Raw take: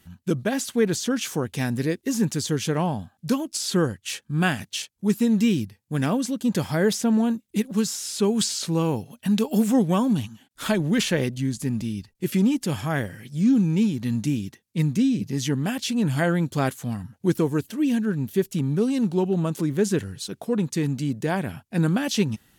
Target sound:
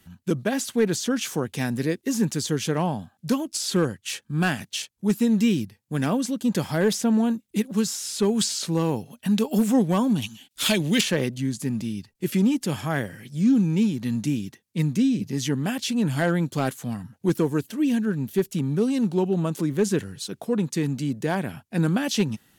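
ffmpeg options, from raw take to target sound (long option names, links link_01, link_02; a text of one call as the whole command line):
ffmpeg -i in.wav -filter_complex "[0:a]asettb=1/sr,asplit=3[link_01][link_02][link_03];[link_01]atrim=end=10.224[link_04];[link_02]atrim=start=10.22:end=11.01,asetpts=PTS-STARTPTS,afade=type=in:duration=0.004:curve=qsin,afade=type=out:start_time=0.786:duration=0.004:curve=qsin,highshelf=frequency=2000:width_type=q:width=1.5:gain=9[link_05];[link_03]atrim=start=11.006[link_06];[link_04][link_05]acrossfade=duration=0.004:curve1=hsin:curve2=qsin[link_07];[link_07][link_06]acrossfade=duration=0.004:curve1=qsin:curve2=hsin,acrossover=split=100[link_08][link_09];[link_08]acompressor=threshold=-56dB:ratio=6[link_10];[link_10][link_09]amix=inputs=2:normalize=0,asoftclip=type=hard:threshold=-13dB" out.wav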